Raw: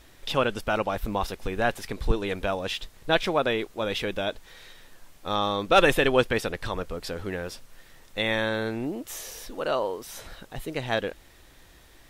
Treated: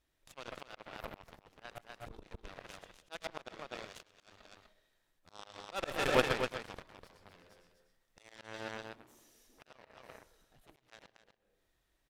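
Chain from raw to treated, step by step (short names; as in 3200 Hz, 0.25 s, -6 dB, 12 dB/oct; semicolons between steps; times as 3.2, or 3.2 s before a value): reverb RT60 0.55 s, pre-delay 70 ms, DRR 3.5 dB; added harmonics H 2 -27 dB, 5 -25 dB, 7 -14 dB, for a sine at -5.5 dBFS; echo 0.248 s -7.5 dB; auto swell 0.333 s; gain -8 dB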